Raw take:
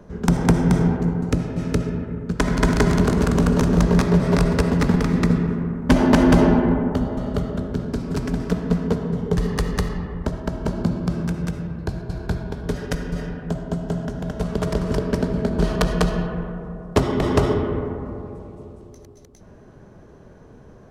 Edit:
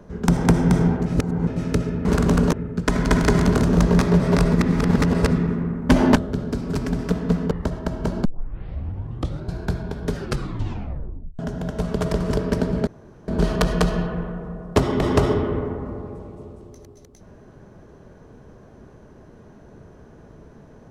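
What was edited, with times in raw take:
0:01.06–0:01.47: reverse
0:03.14–0:03.62: move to 0:02.05
0:04.53–0:05.32: reverse
0:06.16–0:07.57: remove
0:08.92–0:10.12: remove
0:10.86: tape start 1.27 s
0:12.75: tape stop 1.25 s
0:15.48: splice in room tone 0.41 s

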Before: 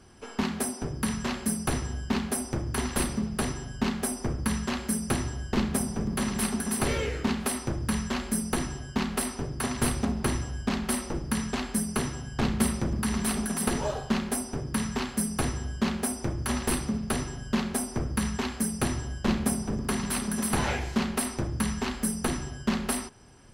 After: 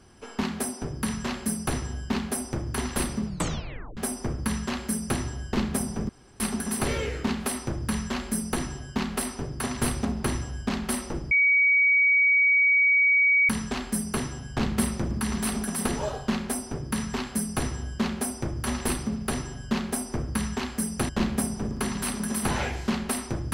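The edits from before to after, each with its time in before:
0:03.26: tape stop 0.71 s
0:06.09–0:06.40: fill with room tone
0:11.31: insert tone 2,260 Hz −17 dBFS 2.18 s
0:18.91–0:19.17: remove

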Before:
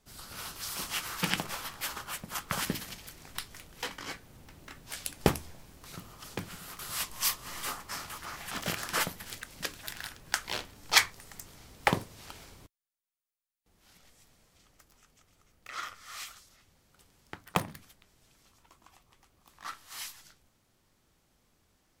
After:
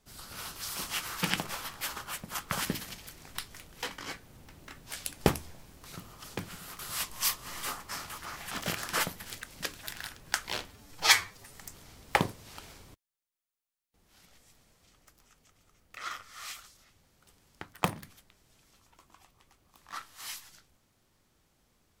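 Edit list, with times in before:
0:10.70–0:11.26: time-stretch 1.5×

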